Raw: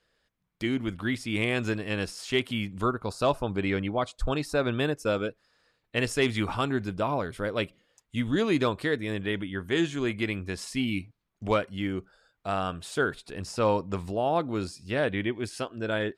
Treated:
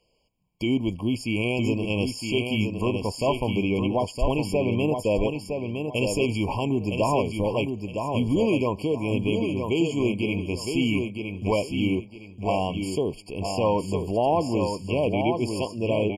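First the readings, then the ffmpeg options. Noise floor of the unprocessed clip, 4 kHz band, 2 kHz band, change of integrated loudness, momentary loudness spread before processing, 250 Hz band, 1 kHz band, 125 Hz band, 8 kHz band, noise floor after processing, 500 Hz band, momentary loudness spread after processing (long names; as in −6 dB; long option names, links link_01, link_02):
−77 dBFS, +2.0 dB, −1.5 dB, +3.5 dB, 7 LU, +5.0 dB, +2.5 dB, +5.5 dB, +3.0 dB, −45 dBFS, +4.0 dB, 5 LU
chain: -af "alimiter=limit=-19dB:level=0:latency=1:release=32,aecho=1:1:962|1924|2886|3848:0.531|0.149|0.0416|0.0117,afftfilt=real='re*eq(mod(floor(b*sr/1024/1100),2),0)':imag='im*eq(mod(floor(b*sr/1024/1100),2),0)':win_size=1024:overlap=0.75,volume=5.5dB"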